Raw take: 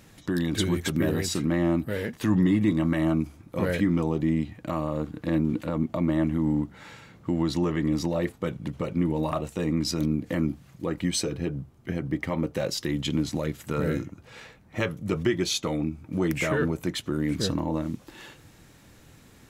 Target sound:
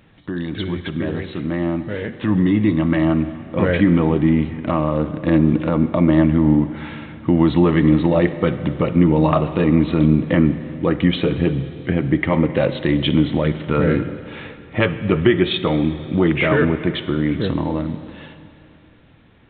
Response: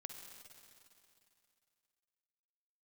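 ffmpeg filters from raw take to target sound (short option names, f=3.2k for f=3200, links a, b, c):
-filter_complex "[0:a]dynaudnorm=f=480:g=11:m=11dB,asplit=2[a][b];[1:a]atrim=start_sample=2205[c];[b][c]afir=irnorm=-1:irlink=0,volume=2.5dB[d];[a][d]amix=inputs=2:normalize=0,aresample=8000,aresample=44100,volume=-3.5dB"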